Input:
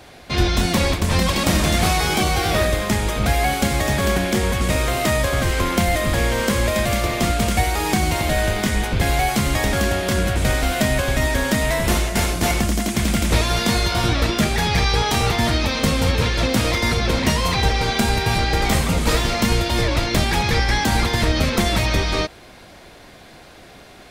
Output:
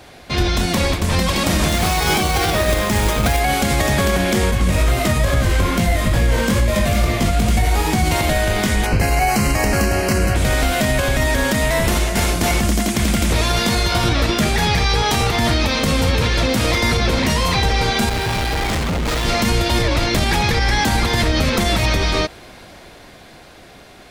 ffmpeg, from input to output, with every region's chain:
ffmpeg -i in.wav -filter_complex "[0:a]asettb=1/sr,asplit=3[link_01][link_02][link_03];[link_01]atrim=end=1.684[link_04];[link_02]atrim=start=1.68:end=3.4,asetpts=PTS-STARTPTS,afade=type=in:duration=0.004:curve=qsin,afade=type=out:start_time=1.716:duration=0.004:curve=qsin,equalizer=frequency=960:width=5.7:gain=2.5,acrusher=bits=3:mode=log:mix=0:aa=0.000001[link_05];[link_03]atrim=start=3.396[link_06];[link_04][link_05]acrossfade=duration=0.004:curve1=hsin:curve2=qsin[link_07];[link_07][link_06]acrossfade=duration=0.004:curve1=qsin:curve2=hsin,asettb=1/sr,asplit=3[link_08][link_09][link_10];[link_08]atrim=end=4.514[link_11];[link_09]atrim=start=4.51:end=8.04,asetpts=PTS-STARTPTS,afade=type=in:duration=0.004:curve=qsin,afade=type=out:start_time=3.526:duration=0.004:curve=qsin,bass=frequency=250:gain=6,treble=frequency=4000:gain=0,flanger=delay=17.5:depth=4.3:speed=2.3[link_12];[link_10]atrim=start=8.036[link_13];[link_11][link_12]acrossfade=duration=0.004:curve1=hsin:curve2=qsin[link_14];[link_14][link_13]acrossfade=duration=0.004:curve1=qsin:curve2=hsin,asettb=1/sr,asplit=3[link_15][link_16][link_17];[link_15]atrim=end=8.864[link_18];[link_16]atrim=start=8.86:end=10.35,asetpts=PTS-STARTPTS,afade=type=in:duration=0.004:curve=qsin,afade=type=out:start_time=1.486:duration=0.004:curve=qsin,asuperstop=centerf=3500:order=4:qfactor=3.2,asplit=2[link_19][link_20];[link_20]adelay=19,volume=-12dB[link_21];[link_19][link_21]amix=inputs=2:normalize=0,atrim=end_sample=65709[link_22];[link_17]atrim=start=10.346[link_23];[link_18][link_22]acrossfade=duration=0.004:curve1=hsin:curve2=qsin[link_24];[link_24][link_23]acrossfade=duration=0.004:curve1=qsin:curve2=hsin,asettb=1/sr,asplit=3[link_25][link_26][link_27];[link_25]atrim=end=18.094[link_28];[link_26]atrim=start=18.09:end=19.25,asetpts=PTS-STARTPTS,afade=type=in:duration=0.004:curve=qsin,afade=type=out:start_time=1.156:duration=0.004:curve=qsin,adynamicsmooth=sensitivity=5.5:basefreq=1300,asoftclip=type=hard:threshold=-22dB[link_29];[link_27]atrim=start=19.246[link_30];[link_28][link_29]acrossfade=duration=0.004:curve1=hsin:curve2=qsin[link_31];[link_31][link_30]acrossfade=duration=0.004:curve1=qsin:curve2=hsin,dynaudnorm=framelen=180:gausssize=17:maxgain=5dB,alimiter=level_in=8dB:limit=-1dB:release=50:level=0:latency=1,volume=-6.5dB" out.wav

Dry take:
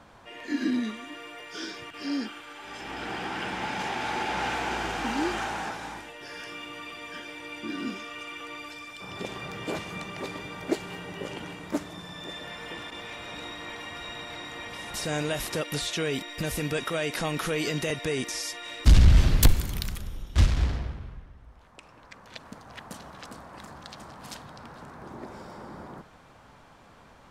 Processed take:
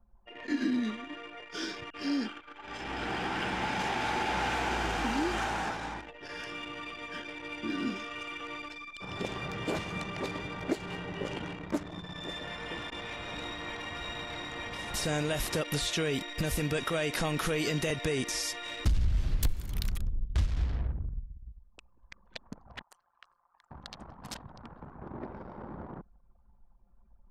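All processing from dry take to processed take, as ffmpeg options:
ffmpeg -i in.wav -filter_complex "[0:a]asettb=1/sr,asplit=3[link_01][link_02][link_03];[link_01]atrim=end=22.824[link_04];[link_02]atrim=start=22.82:end=23.71,asetpts=PTS-STARTPTS,afade=type=in:duration=0.004:curve=qsin,afade=type=out:start_time=0.886:duration=0.004:curve=qsin,highpass=860,bandreject=frequency=3700:width=9.6,aeval=exprs='val(0)*sin(2*PI*88*n/s)':channel_layout=same[link_05];[link_03]atrim=start=23.706[link_06];[link_04][link_05]acrossfade=duration=0.004:curve1=hsin:curve2=qsin[link_07];[link_07][link_06]acrossfade=duration=0.004:curve1=qsin:curve2=hsin,anlmdn=0.251,lowshelf=frequency=74:gain=9,acompressor=threshold=-26dB:ratio=5" out.wav

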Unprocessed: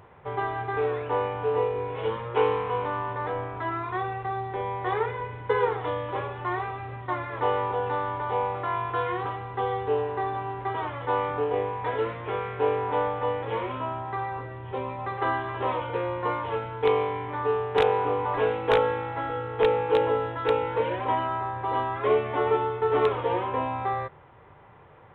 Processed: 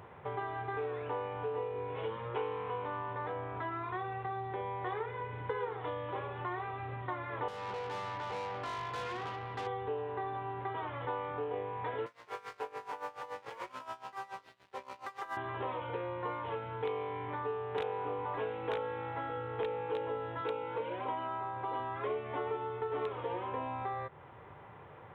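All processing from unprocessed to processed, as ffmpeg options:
ffmpeg -i in.wav -filter_complex "[0:a]asettb=1/sr,asplit=3[link_01][link_02][link_03];[link_01]atrim=end=7.484[link_04];[link_02]atrim=start=7.48:end=9.67,asetpts=PTS-STARTPTS,afade=type=in:duration=0.004:curve=qsin,afade=type=out:start_time=2.186:duration=0.004:curve=qsin,equalizer=frequency=3600:width_type=o:width=1.6:gain=5.5,aeval=exprs='(tanh(35.5*val(0)+0.55)-tanh(0.55))/35.5':channel_layout=same[link_05];[link_03]atrim=start=9.666[link_06];[link_04][link_05]acrossfade=duration=0.004:curve1=hsin:curve2=qsin[link_07];[link_07][link_06]acrossfade=duration=0.004:curve1=qsin:curve2=hsin,asettb=1/sr,asplit=3[link_08][link_09][link_10];[link_08]atrim=end=12.064[link_11];[link_09]atrim=start=12.06:end=15.37,asetpts=PTS-STARTPTS,afade=type=in:duration=0.004:curve=qsin,afade=type=out:start_time=3.306:duration=0.004:curve=qsin,bandpass=frequency=1500:width_type=q:width=0.72,aeval=exprs='sgn(val(0))*max(abs(val(0))-0.00631,0)':channel_layout=same,aeval=exprs='val(0)*pow(10,-19*(0.5-0.5*cos(2*PI*7*n/s))/20)':channel_layout=same[link_12];[link_10]atrim=start=15.366[link_13];[link_11][link_12]acrossfade=duration=0.004:curve1=hsin:curve2=qsin[link_14];[link_14][link_13]acrossfade=duration=0.004:curve1=qsin:curve2=hsin,asettb=1/sr,asplit=3[link_15][link_16][link_17];[link_15]atrim=end=20.414[link_18];[link_16]atrim=start=20.41:end=21.8,asetpts=PTS-STARTPTS,afade=type=in:duration=0.004:curve=qsin,afade=type=out:start_time=1.386:duration=0.004:curve=qsin,highpass=130,bandreject=frequency=1800:width=10[link_19];[link_17]atrim=start=21.796[link_20];[link_18][link_19]acrossfade=duration=0.004:curve1=hsin:curve2=qsin[link_21];[link_21][link_20]acrossfade=duration=0.004:curve1=qsin:curve2=hsin,highpass=71,acompressor=threshold=-38dB:ratio=3" out.wav

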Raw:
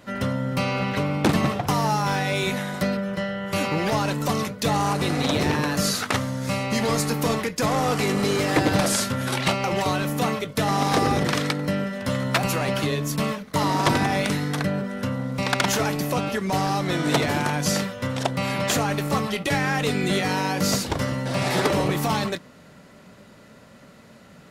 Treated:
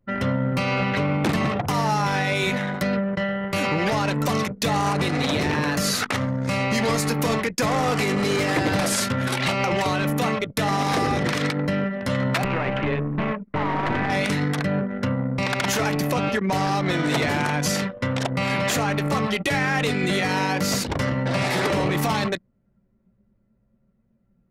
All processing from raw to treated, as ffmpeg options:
ffmpeg -i in.wav -filter_complex "[0:a]asettb=1/sr,asplit=3[link_01][link_02][link_03];[link_01]atrim=end=12.444[link_04];[link_02]atrim=start=12.44:end=14.1,asetpts=PTS-STARTPTS,afade=type=in:duration=0.004:curve=qsin,afade=type=out:start_time=1.656:duration=0.004:curve=qsin,lowpass=frequency=2700:width=0.5412,lowpass=frequency=2700:width=1.3066,aeval=exprs='clip(val(0),-1,0.0447)':channel_layout=same[link_05];[link_03]atrim=start=14.096[link_06];[link_04][link_05]acrossfade=duration=0.004:curve1=hsin:curve2=qsin[link_07];[link_07][link_06]acrossfade=duration=0.004:curve1=qsin:curve2=hsin,anlmdn=39.8,equalizer=frequency=2100:width=1.7:gain=3.5,alimiter=limit=-17.5dB:level=0:latency=1:release=67,volume=3.5dB" out.wav

